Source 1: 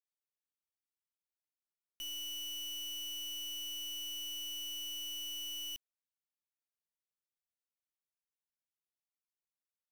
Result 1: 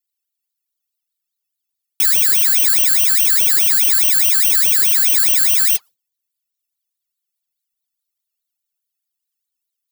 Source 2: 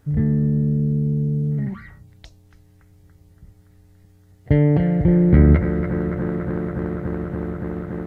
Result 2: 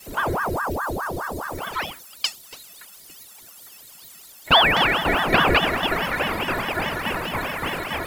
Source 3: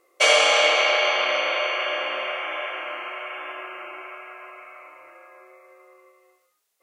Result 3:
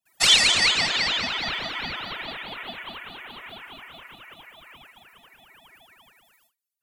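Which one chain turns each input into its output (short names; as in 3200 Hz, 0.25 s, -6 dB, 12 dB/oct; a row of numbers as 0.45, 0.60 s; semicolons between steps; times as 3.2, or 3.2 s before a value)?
tilt +5 dB/oct; gate with hold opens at -46 dBFS; bell 3900 Hz +8 dB 0.21 oct; metallic resonator 240 Hz, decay 0.23 s, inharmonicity 0.03; ring modulator with a swept carrier 770 Hz, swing 85%, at 4.8 Hz; normalise peaks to -3 dBFS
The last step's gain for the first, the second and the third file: +33.5, +26.0, +6.0 dB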